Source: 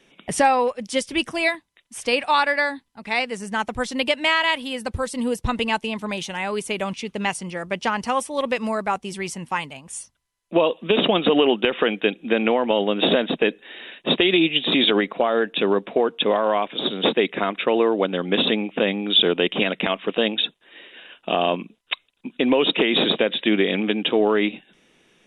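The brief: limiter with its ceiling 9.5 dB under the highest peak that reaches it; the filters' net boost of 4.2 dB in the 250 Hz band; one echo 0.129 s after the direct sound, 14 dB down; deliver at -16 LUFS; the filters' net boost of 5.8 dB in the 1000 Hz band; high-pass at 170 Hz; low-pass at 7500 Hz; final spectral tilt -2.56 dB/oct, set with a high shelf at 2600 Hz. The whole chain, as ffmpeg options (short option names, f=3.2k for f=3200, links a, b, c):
-af "highpass=170,lowpass=7.5k,equalizer=f=250:t=o:g=6,equalizer=f=1k:t=o:g=7.5,highshelf=f=2.6k:g=-4,alimiter=limit=-11dB:level=0:latency=1,aecho=1:1:129:0.2,volume=6.5dB"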